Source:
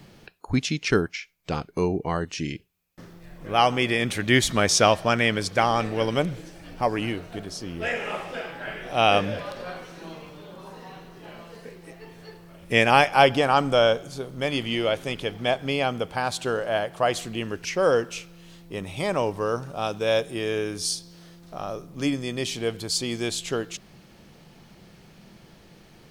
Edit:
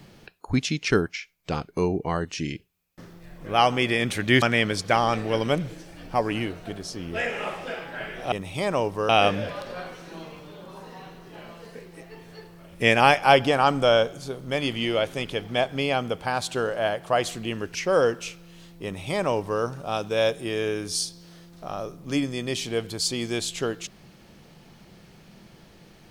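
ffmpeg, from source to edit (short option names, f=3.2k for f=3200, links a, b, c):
-filter_complex "[0:a]asplit=4[a][b][c][d];[a]atrim=end=4.422[e];[b]atrim=start=5.088:end=8.992[f];[c]atrim=start=18.738:end=19.512[g];[d]atrim=start=8.988[h];[e][f]acrossfade=d=0.004:c1=hsin:c2=hsin[i];[i][g]acrossfade=d=0.004:c1=hsin:c2=hsin[j];[j][h]acrossfade=d=0.004:c1=hsin:c2=hsin"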